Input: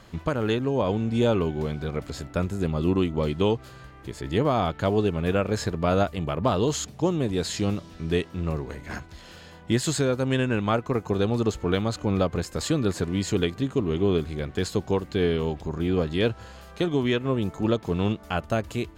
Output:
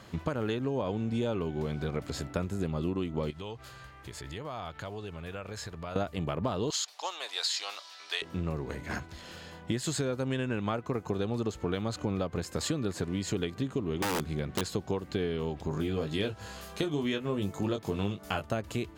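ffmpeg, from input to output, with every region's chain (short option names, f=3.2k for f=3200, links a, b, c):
-filter_complex "[0:a]asettb=1/sr,asplit=3[a][b][c];[a]atrim=end=3.304[d];[b]atrim=start=3.3:end=5.96,asetpts=PTS-STARTPTS,afade=t=in:d=0.004:c=qsin,afade=t=out:st=2.656:d=0.004:c=qsin,equalizer=f=260:w=0.6:g=-10.5,acompressor=threshold=-37dB:ratio=4:attack=3.2:release=140:knee=1:detection=peak[e];[c]atrim=start=5.956[f];[d][e]acrossfade=d=0.004:c1=hsin:c2=qsin[g];[g][f]acrossfade=d=0.004:c1=qsin:c2=hsin,asettb=1/sr,asplit=3[h][i][j];[h]atrim=end=6.704[k];[i]atrim=start=6.7:end=8.22,asetpts=PTS-STARTPTS,afade=t=in:d=0.004:c=qsin,afade=t=out:st=1.516:d=0.004:c=qsin,highpass=f=780:w=0.5412,highpass=f=780:w=1.3066,equalizer=f=4.4k:w=1.4:g=9.5[l];[j]atrim=start=8.216[m];[k][l]acrossfade=d=0.004:c1=hsin:c2=qsin[n];[n][m]acrossfade=d=0.004:c1=qsin:c2=hsin,asettb=1/sr,asplit=3[o][p][q];[o]atrim=end=14.024[r];[p]atrim=start=14.02:end=14.61,asetpts=PTS-STARTPTS,afade=t=in:d=0.004:c=qsin,afade=t=out:st=0.586:d=0.004:c=qsin,aeval=exprs='(mod(7.94*val(0)+1,2)-1)/7.94':c=same,equalizer=f=180:w=3.7:g=9[s];[q]atrim=start=14.606[t];[r][s]acrossfade=d=0.004:c1=hsin:c2=qsin[u];[u][t]acrossfade=d=0.004:c1=qsin:c2=hsin,asettb=1/sr,asplit=3[v][w][x];[v]atrim=end=15.694[y];[w]atrim=start=15.69:end=18.44,asetpts=PTS-STARTPTS,afade=t=in:d=0.004:c=qsin,afade=t=out:st=2.746:d=0.004:c=qsin,highshelf=f=4.7k:g=8,asplit=2[z][aa];[aa]adelay=20,volume=-6dB[ab];[z][ab]amix=inputs=2:normalize=0,atrim=end_sample=121275[ac];[x]atrim=start=18.436[ad];[y][ac]acrossfade=d=0.004:c1=hsin:c2=qsin[ae];[ae][ad]acrossfade=d=0.004:c1=qsin:c2=hsin,highpass=67,acompressor=threshold=-28dB:ratio=6"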